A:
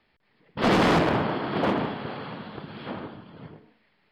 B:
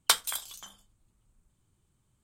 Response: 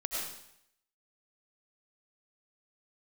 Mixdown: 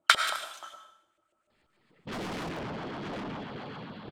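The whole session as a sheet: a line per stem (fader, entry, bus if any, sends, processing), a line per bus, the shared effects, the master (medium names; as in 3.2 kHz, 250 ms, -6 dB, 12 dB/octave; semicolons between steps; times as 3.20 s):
-2.5 dB, 1.50 s, no send, compression, threshold -22 dBFS, peak gain reduction 4.5 dB; LFO notch saw down 7.5 Hz 320–2900 Hz; saturation -32 dBFS, distortion -7 dB
+1.5 dB, 0.00 s, send -7 dB, treble shelf 2.3 kHz +9.5 dB; small resonant body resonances 340/590/1300 Hz, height 16 dB, ringing for 45 ms; LFO band-pass saw up 6.8 Hz 560–2800 Hz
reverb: on, RT60 0.75 s, pre-delay 60 ms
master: none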